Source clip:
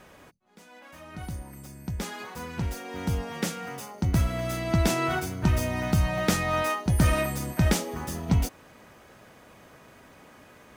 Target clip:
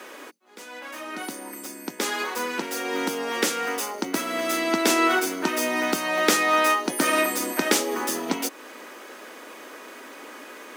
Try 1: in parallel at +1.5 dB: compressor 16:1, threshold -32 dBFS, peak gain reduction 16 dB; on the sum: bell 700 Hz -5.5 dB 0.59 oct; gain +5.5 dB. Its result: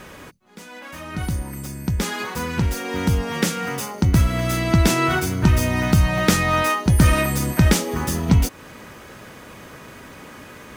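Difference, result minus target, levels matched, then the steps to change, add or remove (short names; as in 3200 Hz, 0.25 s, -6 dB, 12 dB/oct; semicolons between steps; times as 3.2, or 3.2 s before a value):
250 Hz band +2.5 dB
add after the parallel path: steep high-pass 270 Hz 36 dB/oct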